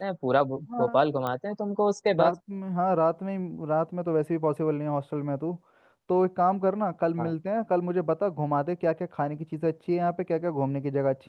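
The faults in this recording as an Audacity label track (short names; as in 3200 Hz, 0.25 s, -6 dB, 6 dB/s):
1.270000	1.270000	pop -18 dBFS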